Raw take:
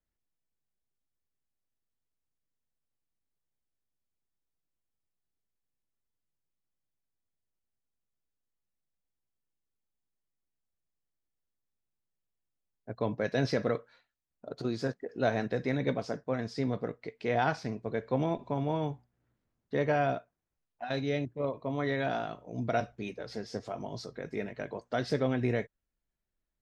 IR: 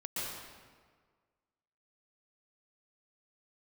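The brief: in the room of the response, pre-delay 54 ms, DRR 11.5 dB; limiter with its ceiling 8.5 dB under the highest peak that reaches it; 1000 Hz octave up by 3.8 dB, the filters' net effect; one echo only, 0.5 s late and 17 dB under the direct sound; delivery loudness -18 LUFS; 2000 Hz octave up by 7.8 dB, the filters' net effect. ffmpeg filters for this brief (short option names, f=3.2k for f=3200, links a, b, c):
-filter_complex "[0:a]equalizer=f=1k:t=o:g=4,equalizer=f=2k:t=o:g=8.5,alimiter=limit=-18.5dB:level=0:latency=1,aecho=1:1:500:0.141,asplit=2[a][b];[1:a]atrim=start_sample=2205,adelay=54[c];[b][c]afir=irnorm=-1:irlink=0,volume=-15dB[d];[a][d]amix=inputs=2:normalize=0,volume=15dB"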